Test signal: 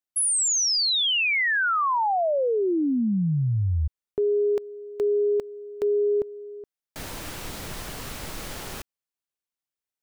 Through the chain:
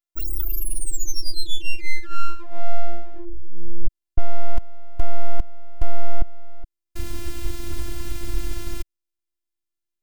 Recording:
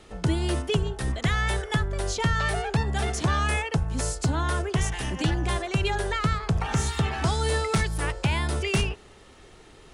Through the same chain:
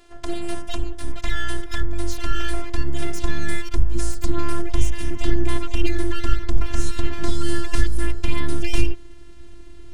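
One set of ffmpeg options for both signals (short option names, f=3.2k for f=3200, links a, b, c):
-af "afftfilt=real='hypot(re,im)*cos(PI*b)':imag='0':win_size=512:overlap=0.75,aeval=exprs='abs(val(0))':c=same,asubboost=boost=9.5:cutoff=220,volume=1.5dB"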